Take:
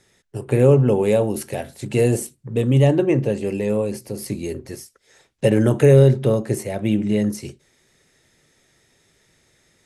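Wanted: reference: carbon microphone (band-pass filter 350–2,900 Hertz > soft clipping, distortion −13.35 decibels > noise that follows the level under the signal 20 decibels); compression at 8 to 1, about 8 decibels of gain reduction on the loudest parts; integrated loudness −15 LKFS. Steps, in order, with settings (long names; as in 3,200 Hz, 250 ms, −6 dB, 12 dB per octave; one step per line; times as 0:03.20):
downward compressor 8 to 1, threshold −16 dBFS
band-pass filter 350–2,900 Hz
soft clipping −21.5 dBFS
noise that follows the level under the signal 20 dB
level +15 dB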